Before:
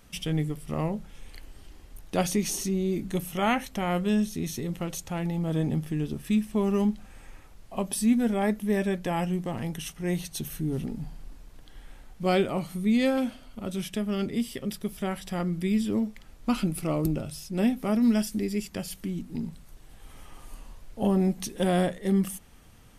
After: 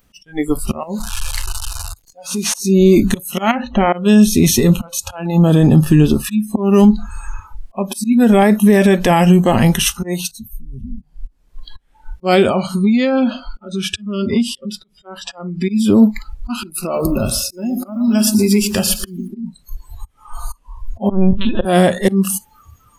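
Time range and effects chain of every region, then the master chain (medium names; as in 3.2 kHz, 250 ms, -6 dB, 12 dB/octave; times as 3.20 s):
0.83–2.54 s: one-bit delta coder 64 kbps, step -40 dBFS + treble shelf 6.1 kHz +6 dB + compression 12:1, threshold -34 dBFS
3.51–3.93 s: hum notches 60/120/180/240/300/360/420/480 Hz + compression 8:1, threshold -27 dBFS + tape spacing loss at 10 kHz 28 dB
10.31–11.02 s: amplifier tone stack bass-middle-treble 10-0-1 + three bands compressed up and down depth 40%
12.49–15.69 s: compression 20:1, threshold -31 dBFS + distance through air 60 m
16.82–19.28 s: compression 16:1, threshold -30 dBFS + bit-crushed delay 117 ms, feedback 55%, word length 10-bit, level -11 dB
21.09–21.65 s: bass shelf 97 Hz +12 dB + LPC vocoder at 8 kHz pitch kept
whole clip: slow attack 367 ms; spectral noise reduction 25 dB; loudness maximiser +23 dB; trim -1 dB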